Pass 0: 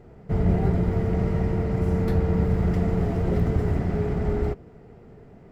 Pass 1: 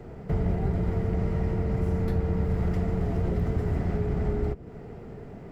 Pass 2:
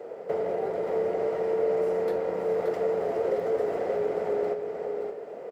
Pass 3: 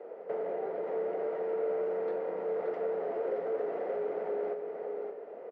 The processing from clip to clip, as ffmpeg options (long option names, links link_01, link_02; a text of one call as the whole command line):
ffmpeg -i in.wav -filter_complex "[0:a]acrossover=split=92|390[link_01][link_02][link_03];[link_01]acompressor=threshold=-34dB:ratio=4[link_04];[link_02]acompressor=threshold=-37dB:ratio=4[link_05];[link_03]acompressor=threshold=-44dB:ratio=4[link_06];[link_04][link_05][link_06]amix=inputs=3:normalize=0,volume=6dB" out.wav
ffmpeg -i in.wav -af "highpass=frequency=510:width_type=q:width=4.9,aecho=1:1:576:0.501" out.wav
ffmpeg -i in.wav -filter_complex "[0:a]asplit=2[link_01][link_02];[link_02]volume=26.5dB,asoftclip=hard,volume=-26.5dB,volume=-8dB[link_03];[link_01][link_03]amix=inputs=2:normalize=0,highpass=240,lowpass=2300,volume=-8dB" out.wav